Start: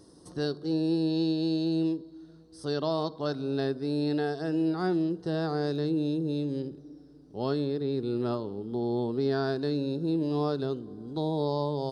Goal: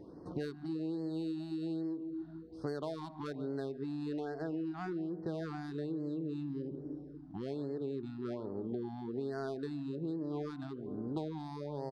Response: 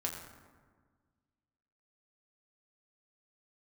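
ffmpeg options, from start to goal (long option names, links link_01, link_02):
-filter_complex "[0:a]lowshelf=frequency=140:gain=-5,adynamicsmooth=sensitivity=3.5:basefreq=1500,equalizer=frequency=2000:width=1.5:gain=2.5,asplit=2[link_01][link_02];[link_02]adelay=145,lowpass=frequency=810:poles=1,volume=-15dB,asplit=2[link_03][link_04];[link_04]adelay=145,lowpass=frequency=810:poles=1,volume=0.48,asplit=2[link_05][link_06];[link_06]adelay=145,lowpass=frequency=810:poles=1,volume=0.48,asplit=2[link_07][link_08];[link_08]adelay=145,lowpass=frequency=810:poles=1,volume=0.48[link_09];[link_01][link_03][link_05][link_07][link_09]amix=inputs=5:normalize=0,acompressor=threshold=-40dB:ratio=16,afftfilt=real='re*(1-between(b*sr/1024,430*pow(3000/430,0.5+0.5*sin(2*PI*1.2*pts/sr))/1.41,430*pow(3000/430,0.5+0.5*sin(2*PI*1.2*pts/sr))*1.41))':imag='im*(1-between(b*sr/1024,430*pow(3000/430,0.5+0.5*sin(2*PI*1.2*pts/sr))/1.41,430*pow(3000/430,0.5+0.5*sin(2*PI*1.2*pts/sr))*1.41))':win_size=1024:overlap=0.75,volume=5.5dB"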